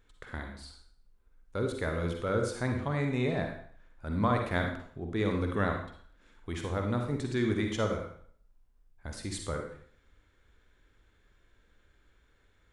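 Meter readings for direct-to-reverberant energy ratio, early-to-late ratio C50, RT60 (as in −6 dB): 3.0 dB, 4.0 dB, 0.55 s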